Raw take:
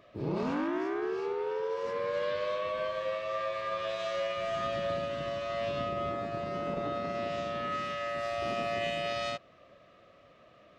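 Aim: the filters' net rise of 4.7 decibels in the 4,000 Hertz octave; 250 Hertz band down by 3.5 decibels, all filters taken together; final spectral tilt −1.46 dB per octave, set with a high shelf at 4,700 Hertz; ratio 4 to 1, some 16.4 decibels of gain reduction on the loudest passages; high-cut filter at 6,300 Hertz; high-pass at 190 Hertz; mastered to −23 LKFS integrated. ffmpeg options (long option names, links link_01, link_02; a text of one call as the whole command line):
ffmpeg -i in.wav -af "highpass=190,lowpass=6300,equalizer=frequency=250:width_type=o:gain=-3.5,equalizer=frequency=4000:width_type=o:gain=5,highshelf=frequency=4700:gain=4,acompressor=threshold=-50dB:ratio=4,volume=26.5dB" out.wav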